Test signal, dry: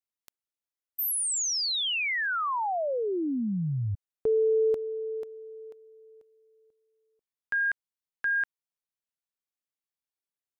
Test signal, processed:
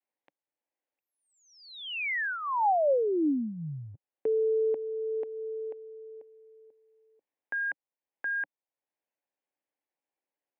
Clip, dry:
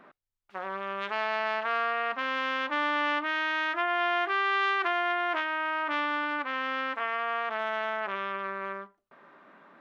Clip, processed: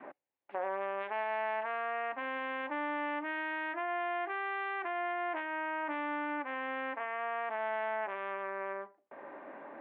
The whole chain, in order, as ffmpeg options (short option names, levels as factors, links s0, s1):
-af "adynamicequalizer=threshold=0.00631:dfrequency=520:dqfactor=2.3:tfrequency=520:tqfactor=2.3:attack=5:release=100:ratio=0.375:range=2.5:mode=cutabove:tftype=bell,acompressor=threshold=0.0224:ratio=6:attack=0.14:release=932:knee=1:detection=rms,highpass=f=160:w=0.5412,highpass=f=160:w=1.3066,equalizer=f=190:t=q:w=4:g=-10,equalizer=f=300:t=q:w=4:g=5,equalizer=f=550:t=q:w=4:g=7,equalizer=f=810:t=q:w=4:g=6,equalizer=f=1300:t=q:w=4:g=-9,lowpass=f=2400:w=0.5412,lowpass=f=2400:w=1.3066,volume=2"